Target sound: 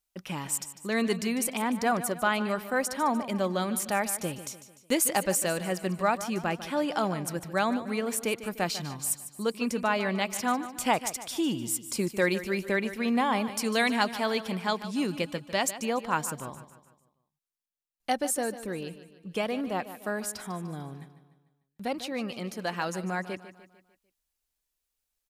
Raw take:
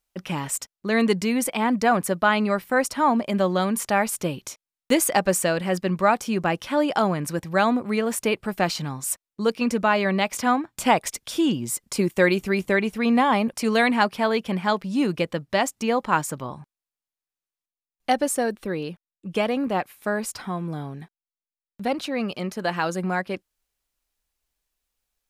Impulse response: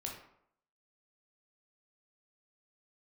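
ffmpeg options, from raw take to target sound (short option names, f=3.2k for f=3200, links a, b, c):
-filter_complex "[0:a]highshelf=f=4.4k:g=6,aecho=1:1:149|298|447|596|745:0.211|0.0993|0.0467|0.0219|0.0103,asplit=3[a][b][c];[a]afade=t=out:st=13.43:d=0.02[d];[b]adynamicequalizer=threshold=0.0316:dfrequency=2300:dqfactor=0.7:tfrequency=2300:tqfactor=0.7:attack=5:release=100:ratio=0.375:range=2:mode=boostabove:tftype=highshelf,afade=t=in:st=13.43:d=0.02,afade=t=out:st=15.78:d=0.02[e];[c]afade=t=in:st=15.78:d=0.02[f];[d][e][f]amix=inputs=3:normalize=0,volume=-7dB"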